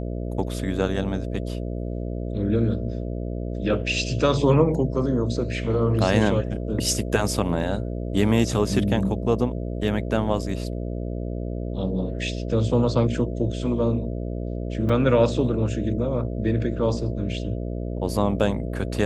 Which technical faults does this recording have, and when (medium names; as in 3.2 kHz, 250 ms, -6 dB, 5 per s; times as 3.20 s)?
buzz 60 Hz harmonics 11 -29 dBFS
14.89 s: dropout 4.8 ms